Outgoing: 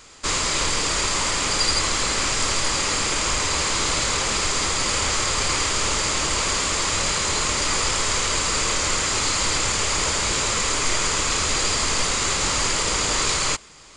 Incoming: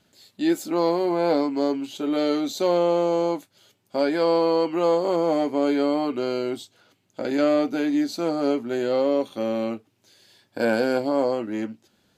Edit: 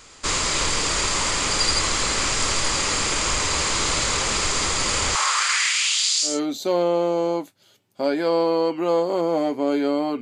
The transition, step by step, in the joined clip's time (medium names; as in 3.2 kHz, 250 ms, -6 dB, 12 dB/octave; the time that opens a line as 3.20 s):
outgoing
5.15–6.40 s: LFO high-pass saw up 0.74 Hz 870–7500 Hz
6.31 s: go over to incoming from 2.26 s, crossfade 0.18 s